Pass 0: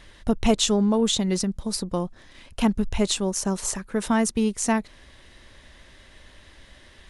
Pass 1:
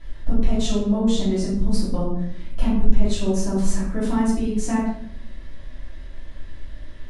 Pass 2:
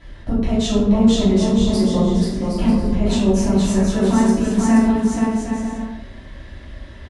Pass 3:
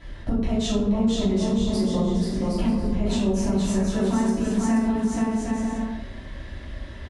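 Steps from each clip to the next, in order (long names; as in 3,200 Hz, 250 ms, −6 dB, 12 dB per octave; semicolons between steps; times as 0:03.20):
spectral tilt −2 dB per octave; downward compressor 10 to 1, threshold −18 dBFS, peak gain reduction 11 dB; rectangular room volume 140 cubic metres, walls mixed, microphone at 2.9 metres; level −9 dB
high-pass filter 45 Hz 12 dB per octave; high-shelf EQ 7,200 Hz −6 dB; bouncing-ball delay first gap 480 ms, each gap 0.6×, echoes 5; level +5 dB
downward compressor 2.5 to 1, threshold −22 dBFS, peak gain reduction 9.5 dB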